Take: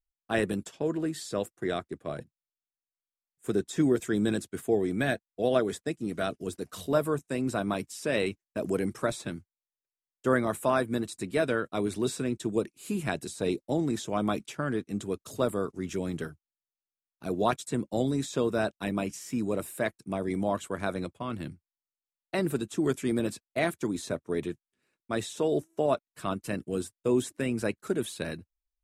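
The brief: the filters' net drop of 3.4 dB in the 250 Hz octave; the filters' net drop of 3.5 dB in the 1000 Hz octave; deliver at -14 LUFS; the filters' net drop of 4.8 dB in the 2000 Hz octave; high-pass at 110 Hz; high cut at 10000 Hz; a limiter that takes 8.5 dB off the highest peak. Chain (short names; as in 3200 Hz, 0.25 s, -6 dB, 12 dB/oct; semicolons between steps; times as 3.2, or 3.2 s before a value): HPF 110 Hz; LPF 10000 Hz; bell 250 Hz -4 dB; bell 1000 Hz -3.5 dB; bell 2000 Hz -5 dB; gain +21.5 dB; limiter -1 dBFS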